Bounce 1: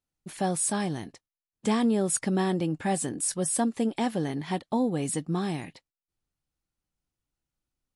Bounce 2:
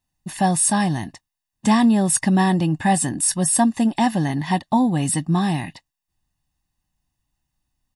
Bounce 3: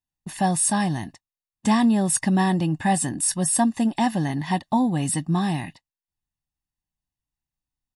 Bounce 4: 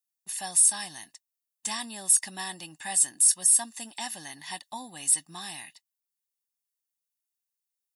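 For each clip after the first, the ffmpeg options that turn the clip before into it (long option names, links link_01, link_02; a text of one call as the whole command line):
ffmpeg -i in.wav -af "aecho=1:1:1.1:0.78,volume=7dB" out.wav
ffmpeg -i in.wav -af "agate=range=-11dB:threshold=-37dB:ratio=16:detection=peak,volume=-3dB" out.wav
ffmpeg -i in.wav -af "aderivative,alimiter=level_in=12dB:limit=-1dB:release=50:level=0:latency=1,volume=-8dB" out.wav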